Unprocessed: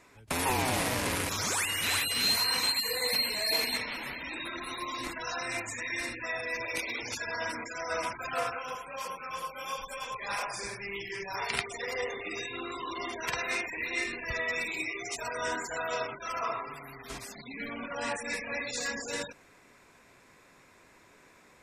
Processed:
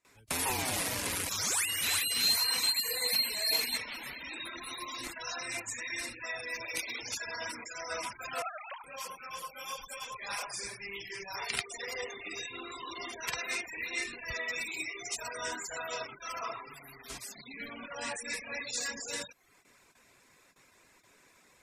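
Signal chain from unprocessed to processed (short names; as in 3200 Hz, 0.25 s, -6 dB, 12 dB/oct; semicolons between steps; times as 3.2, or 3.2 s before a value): 8.42–8.84 sine-wave speech; high shelf 2900 Hz +9 dB; gate with hold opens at -46 dBFS; reverb removal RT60 0.56 s; gain -5.5 dB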